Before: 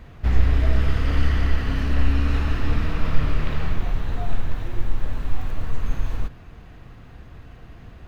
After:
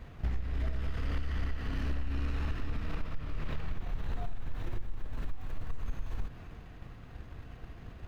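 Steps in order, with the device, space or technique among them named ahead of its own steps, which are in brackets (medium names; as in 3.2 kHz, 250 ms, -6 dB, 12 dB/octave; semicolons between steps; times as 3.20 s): drum-bus smash (transient shaper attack +8 dB, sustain +4 dB; compression 10:1, threshold -18 dBFS, peak gain reduction 18 dB; saturation -16.5 dBFS, distortion -16 dB); trim -6.5 dB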